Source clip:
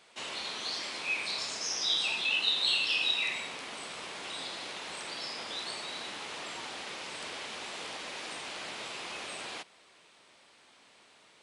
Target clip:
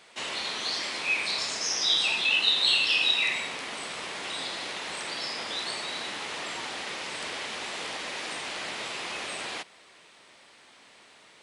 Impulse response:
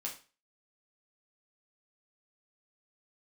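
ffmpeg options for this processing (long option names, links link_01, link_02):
-af "equalizer=frequency=1900:width=4.3:gain=3,volume=5dB"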